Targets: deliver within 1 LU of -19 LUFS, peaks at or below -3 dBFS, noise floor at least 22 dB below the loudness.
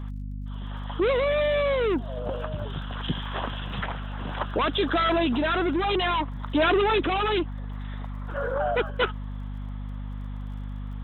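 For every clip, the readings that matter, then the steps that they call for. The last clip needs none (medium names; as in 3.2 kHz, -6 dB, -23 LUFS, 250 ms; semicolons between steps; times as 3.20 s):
tick rate 31 per s; hum 50 Hz; highest harmonic 250 Hz; hum level -31 dBFS; loudness -27.0 LUFS; peak level -12.5 dBFS; loudness target -19.0 LUFS
-> de-click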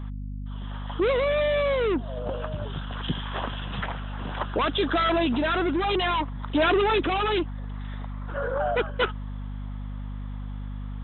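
tick rate 0 per s; hum 50 Hz; highest harmonic 250 Hz; hum level -31 dBFS
-> hum notches 50/100/150/200/250 Hz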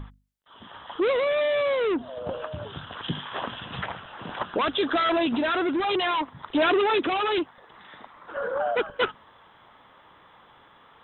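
hum not found; loudness -26.0 LUFS; peak level -13.0 dBFS; loudness target -19.0 LUFS
-> trim +7 dB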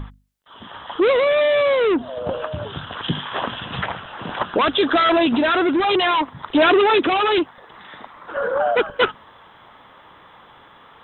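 loudness -19.0 LUFS; peak level -6.0 dBFS; noise floor -48 dBFS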